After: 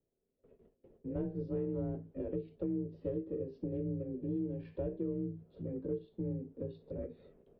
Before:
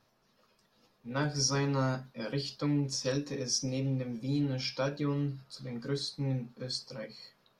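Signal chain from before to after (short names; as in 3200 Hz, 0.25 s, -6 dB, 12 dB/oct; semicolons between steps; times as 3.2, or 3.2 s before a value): gate with hold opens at -56 dBFS; EQ curve 250 Hz 0 dB, 370 Hz +11 dB, 1100 Hz -23 dB; compressor 2.5:1, threshold -48 dBFS, peak gain reduction 16.5 dB; ring modulator 320 Hz; mistuned SSB -290 Hz 230–3200 Hz; gain +12.5 dB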